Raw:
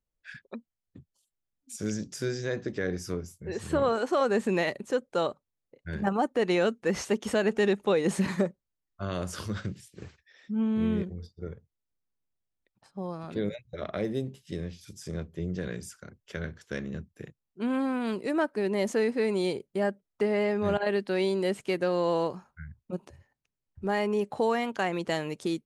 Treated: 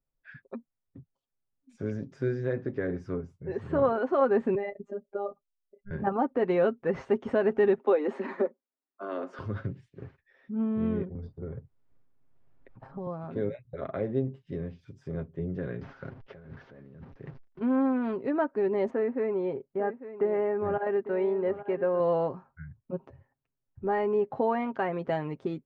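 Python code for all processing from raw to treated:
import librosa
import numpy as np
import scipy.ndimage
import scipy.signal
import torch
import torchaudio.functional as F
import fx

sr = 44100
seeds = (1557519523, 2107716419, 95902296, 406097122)

y = fx.chain(x, sr, fx.spec_expand(power=1.7),
    fx.robotise(hz=201.0), at=(4.55, 5.91))
y = fx.chain(y, sr, fx.steep_highpass(hz=220.0, slope=72),
    fx.high_shelf(hz=9700.0, db=-8.0), at=(7.78, 9.39))
y = fx.chain(y, sr, fx.low_shelf(hz=440.0, db=2.5),
    fx.transient(attack_db=1, sustain_db=10),
    fx.band_squash(depth_pct=70), at=(11.15, 13.07))
y = fx.chain(y, sr, fx.delta_mod(bps=32000, step_db=-49.0),
    fx.gate_hold(open_db=-47.0, close_db=-52.0, hold_ms=71.0, range_db=-21, attack_ms=1.4, release_ms=100.0),
    fx.over_compress(threshold_db=-45.0, ratio=-1.0), at=(15.81, 17.61))
y = fx.chain(y, sr, fx.lowpass(hz=2100.0, slope=12),
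    fx.low_shelf(hz=350.0, db=-5.0),
    fx.echo_single(ms=849, db=-13.0), at=(18.9, 22.0))
y = scipy.signal.sosfilt(scipy.signal.butter(2, 1400.0, 'lowpass', fs=sr, output='sos'), y)
y = y + 0.5 * np.pad(y, (int(7.5 * sr / 1000.0), 0))[:len(y)]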